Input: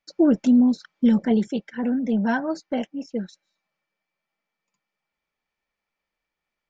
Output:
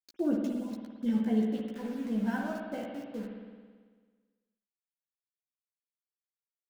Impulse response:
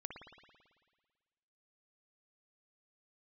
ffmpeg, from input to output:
-filter_complex "[0:a]aeval=exprs='val(0)*gte(abs(val(0)),0.02)':channel_layout=same,asplit=2[link_01][link_02];[link_02]adelay=14,volume=-3.5dB[link_03];[link_01][link_03]amix=inputs=2:normalize=0[link_04];[1:a]atrim=start_sample=2205[link_05];[link_04][link_05]afir=irnorm=-1:irlink=0,volume=-8.5dB"

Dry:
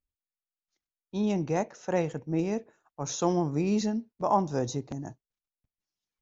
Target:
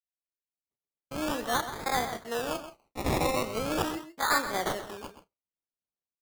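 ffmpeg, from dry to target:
ffmpeg -i in.wav -filter_complex "[0:a]aemphasis=mode=production:type=riaa,acrossover=split=6200[link_01][link_02];[link_02]acompressor=threshold=-44dB:ratio=4:attack=1:release=60[link_03];[link_01][link_03]amix=inputs=2:normalize=0,lowshelf=frequency=490:gain=-5,agate=range=-28dB:threshold=-58dB:ratio=16:detection=peak,dynaudnorm=framelen=430:gausssize=3:maxgain=12.5dB,aeval=exprs='0.335*(abs(mod(val(0)/0.335+3,4)-2)-1)':channel_layout=same,asetrate=64194,aresample=44100,atempo=0.686977,acrusher=samples=22:mix=1:aa=0.000001:lfo=1:lforange=13.2:lforate=0.4,asplit=2[link_04][link_05];[link_05]adelay=32,volume=-13.5dB[link_06];[link_04][link_06]amix=inputs=2:normalize=0,asplit=2[link_07][link_08];[link_08]adelay=128.3,volume=-11dB,highshelf=frequency=4000:gain=-2.89[link_09];[link_07][link_09]amix=inputs=2:normalize=0,volume=-8dB" out.wav

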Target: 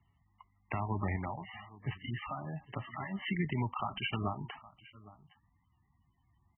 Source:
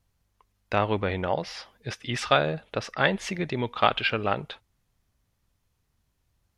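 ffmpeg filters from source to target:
ffmpeg -i in.wav -filter_complex "[0:a]highpass=72,aecho=1:1:1:0.86,acompressor=threshold=-28dB:ratio=1.5,alimiter=limit=-18dB:level=0:latency=1:release=220,acrossover=split=150[link_01][link_02];[link_02]acompressor=threshold=-36dB:ratio=2[link_03];[link_01][link_03]amix=inputs=2:normalize=0,asettb=1/sr,asplit=3[link_04][link_05][link_06];[link_04]atrim=end=1.164[link_07];[link_05]atrim=start=1.16:end=3.19,asetpts=PTS-STARTPTS,afade=type=in:duration=0.004:curve=qsin,afade=type=out:start_time=2.026:duration=0.004:curve=qsin,flanger=delay=6.9:depth=3.7:regen=54:speed=1.3:shape=sinusoidal[link_08];[link_06]atrim=start=3.186[link_09];[link_07][link_08]acrossfade=duration=0.004:curve1=hsin:curve2=qsin[link_10];[link_10][link_09]acrossfade=duration=0.004:curve1=qsin:curve2=hsin,aecho=1:1:814:0.1" -ar 22050 -c:a libmp3lame -b:a 8k out.mp3

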